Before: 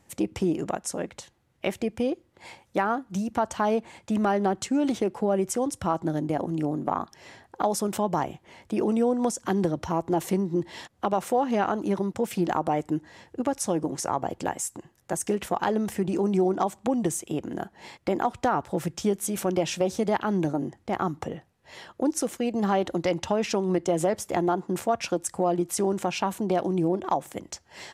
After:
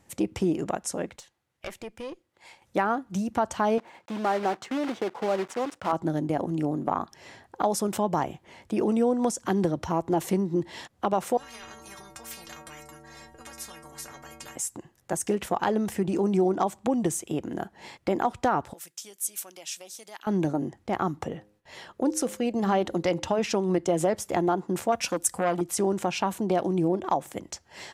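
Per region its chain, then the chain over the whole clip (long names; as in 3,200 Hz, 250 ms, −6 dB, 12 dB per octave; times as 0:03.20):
0:01.16–0:02.62: low-shelf EQ 470 Hz −10 dB + tube saturation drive 26 dB, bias 0.75
0:03.78–0:05.93: one scale factor per block 3 bits + resonant band-pass 930 Hz, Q 0.56
0:11.37–0:14.56: parametric band 3,100 Hz −8.5 dB 1.1 octaves + stiff-string resonator 68 Hz, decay 0.81 s, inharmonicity 0.03 + every bin compressed towards the loudest bin 10 to 1
0:18.73–0:20.27: first difference + one half of a high-frequency compander decoder only
0:21.31–0:23.39: hum removal 104 Hz, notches 5 + noise gate with hold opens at −53 dBFS, closes at −59 dBFS
0:24.92–0:25.61: high-shelf EQ 7,900 Hz +11.5 dB + comb filter 4 ms, depth 35% + saturating transformer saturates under 1,100 Hz
whole clip: no processing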